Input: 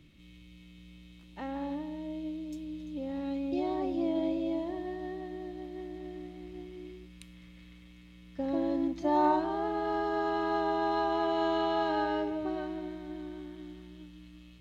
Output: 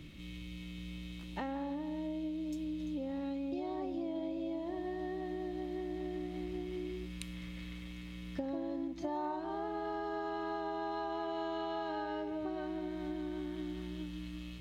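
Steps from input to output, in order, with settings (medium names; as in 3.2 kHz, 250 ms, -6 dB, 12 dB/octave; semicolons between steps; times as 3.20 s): compression 8:1, threshold -44 dBFS, peak gain reduction 21 dB; trim +8 dB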